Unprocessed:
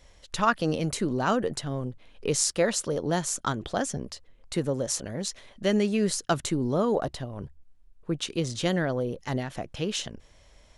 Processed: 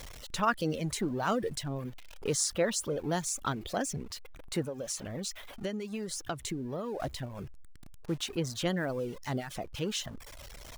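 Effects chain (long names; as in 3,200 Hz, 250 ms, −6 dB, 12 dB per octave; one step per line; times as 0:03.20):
converter with a step at zero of −35 dBFS
0:04.63–0:07.00: downward compressor 6 to 1, threshold −27 dBFS, peak gain reduction 8.5 dB
reverb reduction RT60 0.78 s
level −5 dB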